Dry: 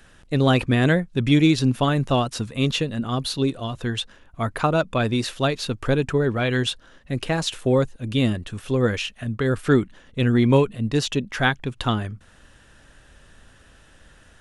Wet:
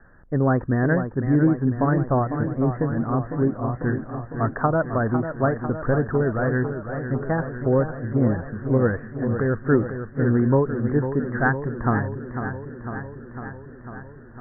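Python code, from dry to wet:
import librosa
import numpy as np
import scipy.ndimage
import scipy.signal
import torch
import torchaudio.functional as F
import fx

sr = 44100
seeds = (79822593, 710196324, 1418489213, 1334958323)

p1 = scipy.signal.sosfilt(scipy.signal.butter(16, 1800.0, 'lowpass', fs=sr, output='sos'), x)
p2 = fx.rider(p1, sr, range_db=10, speed_s=0.5)
p3 = p1 + (p2 * 10.0 ** (-3.0 / 20.0))
p4 = fx.echo_warbled(p3, sr, ms=501, feedback_pct=70, rate_hz=2.8, cents=91, wet_db=-9.0)
y = p4 * 10.0 ** (-5.5 / 20.0)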